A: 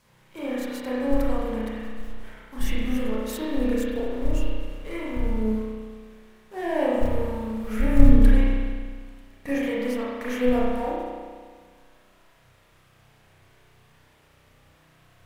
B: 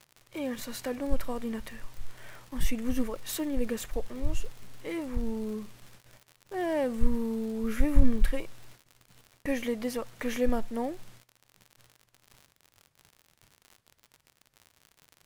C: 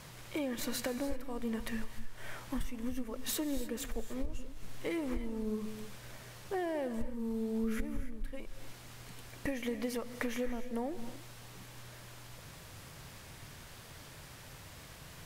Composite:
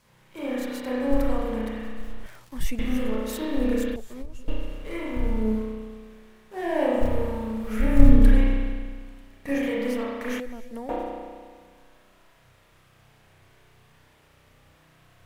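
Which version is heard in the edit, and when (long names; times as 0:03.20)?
A
0:02.26–0:02.79: punch in from B
0:03.96–0:04.48: punch in from C
0:10.40–0:10.89: punch in from C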